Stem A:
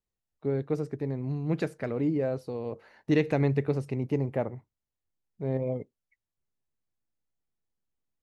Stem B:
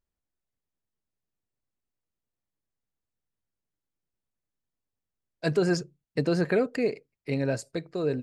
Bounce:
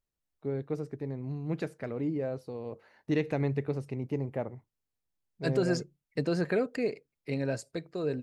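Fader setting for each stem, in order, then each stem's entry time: -4.5 dB, -4.0 dB; 0.00 s, 0.00 s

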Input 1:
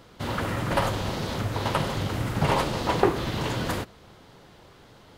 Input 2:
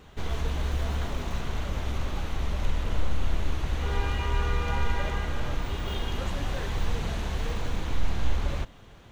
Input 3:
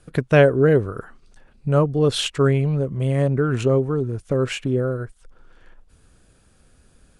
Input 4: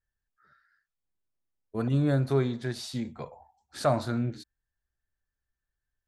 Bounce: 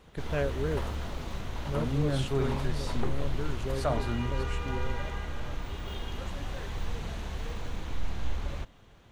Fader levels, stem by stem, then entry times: -16.0 dB, -6.0 dB, -17.0 dB, -5.0 dB; 0.00 s, 0.00 s, 0.00 s, 0.00 s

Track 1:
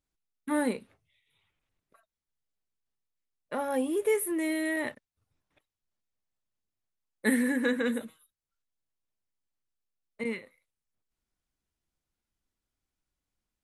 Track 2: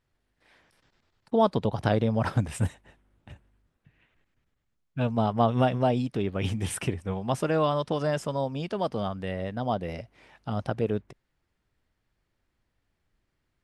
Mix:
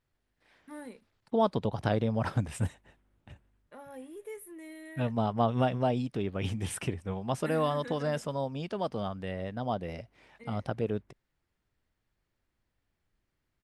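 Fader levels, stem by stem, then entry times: -16.5 dB, -4.0 dB; 0.20 s, 0.00 s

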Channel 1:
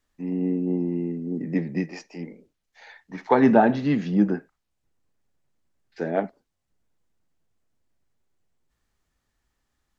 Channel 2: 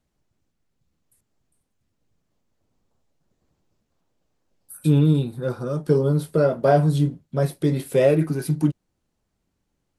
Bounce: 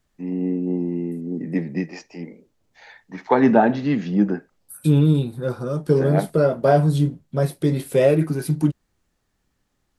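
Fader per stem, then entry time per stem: +1.5 dB, +1.0 dB; 0.00 s, 0.00 s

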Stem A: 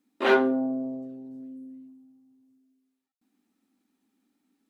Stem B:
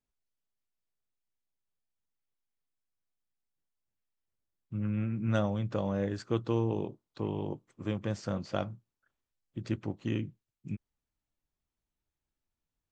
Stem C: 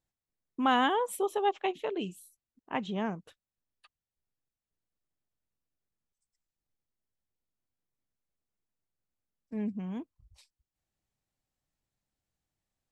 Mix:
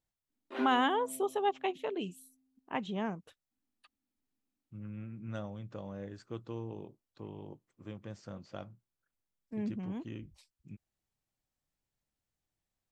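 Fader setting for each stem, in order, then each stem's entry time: -18.0 dB, -11.5 dB, -2.5 dB; 0.30 s, 0.00 s, 0.00 s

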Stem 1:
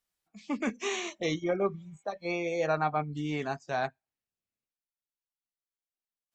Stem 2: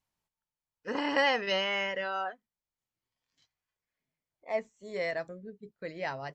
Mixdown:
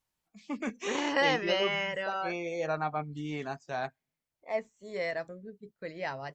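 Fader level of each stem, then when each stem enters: -3.5 dB, -0.5 dB; 0.00 s, 0.00 s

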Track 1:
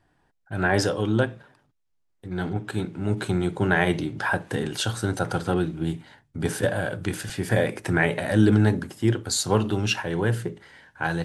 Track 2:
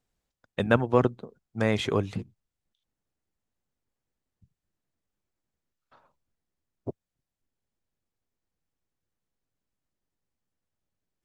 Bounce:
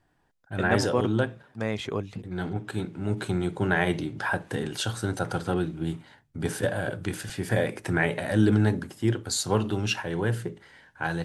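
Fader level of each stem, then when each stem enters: -3.0 dB, -4.5 dB; 0.00 s, 0.00 s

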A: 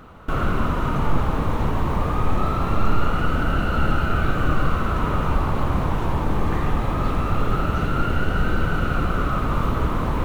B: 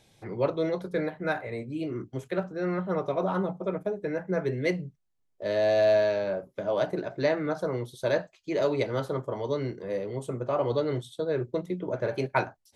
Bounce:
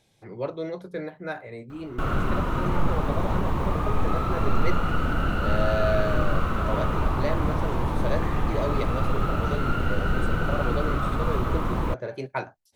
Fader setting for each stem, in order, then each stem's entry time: -3.5 dB, -4.0 dB; 1.70 s, 0.00 s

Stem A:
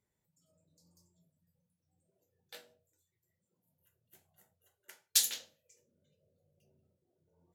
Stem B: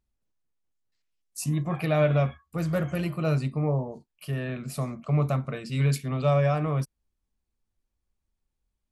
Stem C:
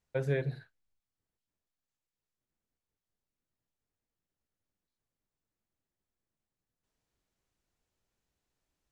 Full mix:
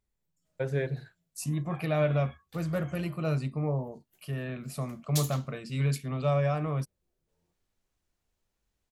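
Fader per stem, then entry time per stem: -6.5 dB, -4.0 dB, +1.0 dB; 0.00 s, 0.00 s, 0.45 s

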